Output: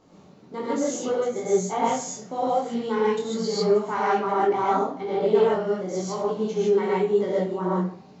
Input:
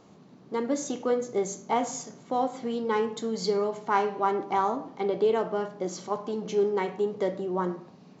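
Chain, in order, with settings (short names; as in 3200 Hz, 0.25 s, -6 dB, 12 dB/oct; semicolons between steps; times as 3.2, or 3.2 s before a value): low shelf 170 Hz +6 dB; notches 50/100/150/200/250 Hz; non-linear reverb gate 0.17 s rising, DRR -6 dB; detuned doubles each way 39 cents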